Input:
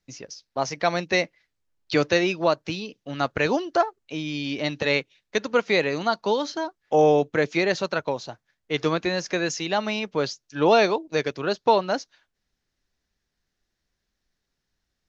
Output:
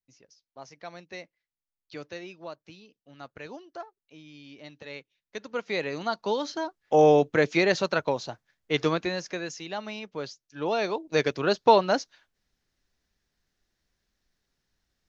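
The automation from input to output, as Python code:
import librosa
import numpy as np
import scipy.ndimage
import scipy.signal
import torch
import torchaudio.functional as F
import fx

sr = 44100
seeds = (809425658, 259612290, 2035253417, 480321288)

y = fx.gain(x, sr, db=fx.line((4.89, -19.0), (5.86, -7.0), (7.1, 0.0), (8.76, 0.0), (9.51, -10.0), (10.77, -10.0), (11.2, 1.0)))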